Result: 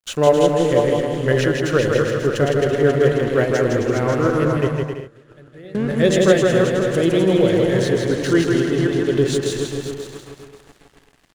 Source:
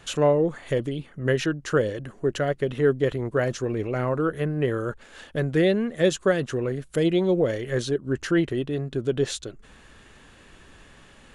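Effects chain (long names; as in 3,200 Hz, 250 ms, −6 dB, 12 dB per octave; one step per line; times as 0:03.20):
feedback delay that plays each chunk backwards 269 ms, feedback 54%, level −4 dB
dead-zone distortion −43 dBFS
0:04.67–0:05.75: gate with flip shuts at −24 dBFS, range −24 dB
bouncing-ball delay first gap 160 ms, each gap 0.65×, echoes 5
level +4 dB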